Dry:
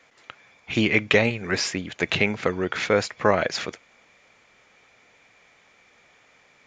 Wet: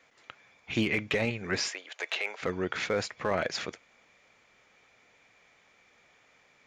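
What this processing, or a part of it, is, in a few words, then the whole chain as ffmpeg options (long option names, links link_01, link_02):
limiter into clipper: -filter_complex "[0:a]alimiter=limit=-11dB:level=0:latency=1:release=11,asoftclip=type=hard:threshold=-12.5dB,asettb=1/sr,asplit=3[link_01][link_02][link_03];[link_01]atrim=end=1.684[link_04];[link_02]atrim=start=1.68:end=2.42,asetpts=PTS-STARTPTS,afade=type=in:duration=0.004:curve=qsin,afade=type=out:start_time=0.736:duration=0.004:curve=qsin,highpass=frequency=510:width=0.5412,highpass=frequency=510:width=1.3066[link_05];[link_03]atrim=start=2.416[link_06];[link_04][link_05]acrossfade=duration=0.004:curve1=hsin:curve2=qsin[link_07];[link_07][link_06]acrossfade=duration=0.004:curve1=qsin:curve2=hsin,volume=-5.5dB"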